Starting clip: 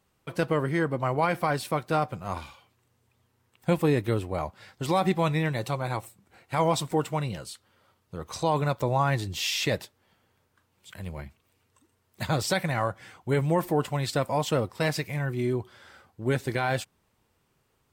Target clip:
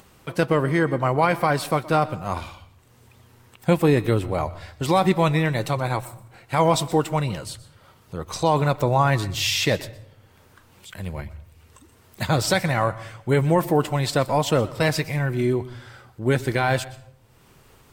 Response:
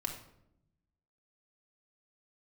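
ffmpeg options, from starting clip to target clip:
-filter_complex "[0:a]acompressor=mode=upward:threshold=-47dB:ratio=2.5,asplit=2[link_01][link_02];[link_02]asubboost=boost=11.5:cutoff=53[link_03];[1:a]atrim=start_sample=2205,adelay=122[link_04];[link_03][link_04]afir=irnorm=-1:irlink=0,volume=-18dB[link_05];[link_01][link_05]amix=inputs=2:normalize=0,volume=5.5dB"

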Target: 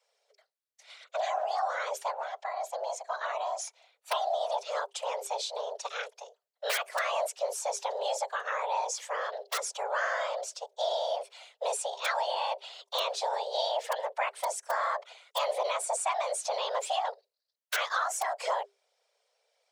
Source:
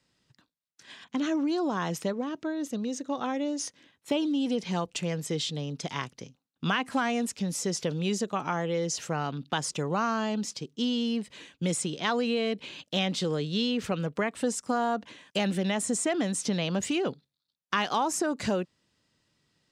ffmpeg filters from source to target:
ffmpeg -i in.wav -af "aeval=exprs='(mod(6.31*val(0)+1,2)-1)/6.31':channel_layout=same,afftfilt=real='hypot(re,im)*cos(2*PI*random(0))':imag='hypot(re,im)*sin(2*PI*random(1))':win_size=512:overlap=0.75,afreqshift=400,volume=3dB" out.wav

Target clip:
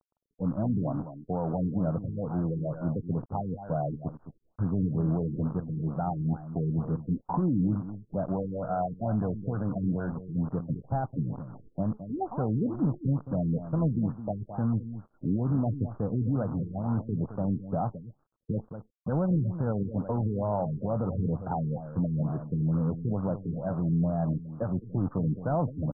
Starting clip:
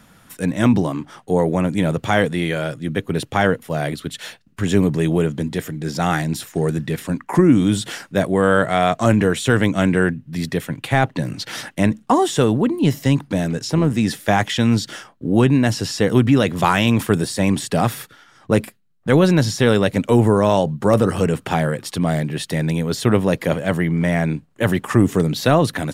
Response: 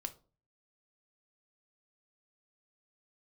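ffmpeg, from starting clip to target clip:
-af "afftdn=noise_reduction=14:noise_floor=-24,aecho=1:1:1.3:0.57,alimiter=limit=-13.5dB:level=0:latency=1:release=164,aresample=11025,acrusher=bits=6:dc=4:mix=0:aa=0.000001,aresample=44100,asuperstop=centerf=2900:order=12:qfactor=0.62,aecho=1:1:215:0.266,afftfilt=real='re*lt(b*sr/1024,440*pow(2500/440,0.5+0.5*sin(2*PI*2.2*pts/sr)))':imag='im*lt(b*sr/1024,440*pow(2500/440,0.5+0.5*sin(2*PI*2.2*pts/sr)))':win_size=1024:overlap=0.75,volume=-6dB"

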